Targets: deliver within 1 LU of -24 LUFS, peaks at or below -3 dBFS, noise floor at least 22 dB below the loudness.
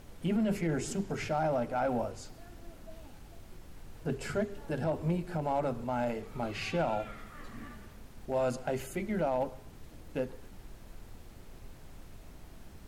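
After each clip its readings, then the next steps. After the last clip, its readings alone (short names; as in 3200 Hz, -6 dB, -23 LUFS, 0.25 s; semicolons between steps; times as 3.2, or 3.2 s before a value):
clipped 0.6%; flat tops at -23.5 dBFS; noise floor -52 dBFS; noise floor target -56 dBFS; loudness -34.0 LUFS; peak -23.5 dBFS; loudness target -24.0 LUFS
-> clip repair -23.5 dBFS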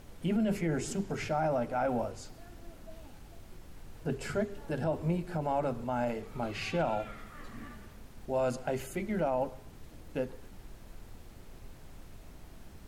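clipped 0.0%; noise floor -52 dBFS; noise floor target -56 dBFS
-> noise print and reduce 6 dB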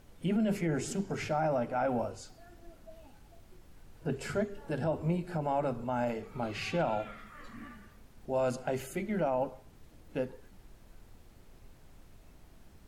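noise floor -57 dBFS; loudness -33.5 LUFS; peak -20.5 dBFS; loudness target -24.0 LUFS
-> gain +9.5 dB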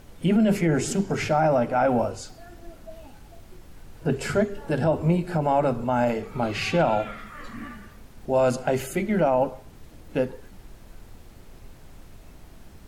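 loudness -24.0 LUFS; peak -11.0 dBFS; noise floor -48 dBFS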